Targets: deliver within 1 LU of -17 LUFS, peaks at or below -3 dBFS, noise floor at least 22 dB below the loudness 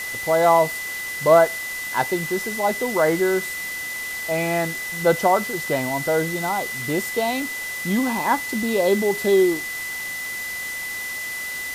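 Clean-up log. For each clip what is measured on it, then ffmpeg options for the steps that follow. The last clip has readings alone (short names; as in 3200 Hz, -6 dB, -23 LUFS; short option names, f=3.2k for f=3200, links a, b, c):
steady tone 2000 Hz; tone level -28 dBFS; noise floor -30 dBFS; noise floor target -44 dBFS; loudness -22.0 LUFS; peak -3.5 dBFS; loudness target -17.0 LUFS
-> -af "bandreject=f=2k:w=30"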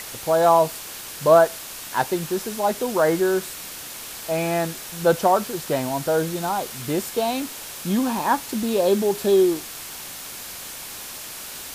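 steady tone none; noise floor -36 dBFS; noise floor target -44 dBFS
-> -af "afftdn=nr=8:nf=-36"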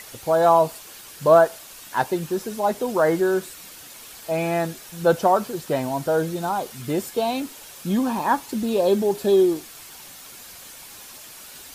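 noise floor -43 dBFS; noise floor target -44 dBFS
-> -af "afftdn=nr=6:nf=-43"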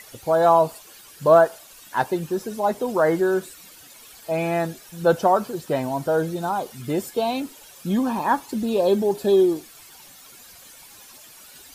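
noise floor -47 dBFS; loudness -22.0 LUFS; peak -3.5 dBFS; loudness target -17.0 LUFS
-> -af "volume=5dB,alimiter=limit=-3dB:level=0:latency=1"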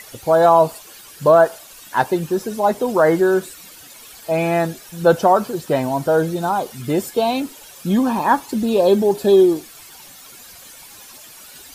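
loudness -17.5 LUFS; peak -3.0 dBFS; noise floor -42 dBFS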